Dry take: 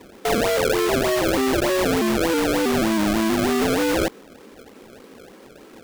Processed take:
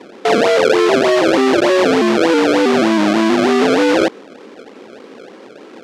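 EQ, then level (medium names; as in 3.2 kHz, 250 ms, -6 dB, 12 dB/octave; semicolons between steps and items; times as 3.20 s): band-pass 270–5200 Hz; bass shelf 500 Hz +4 dB; +7.0 dB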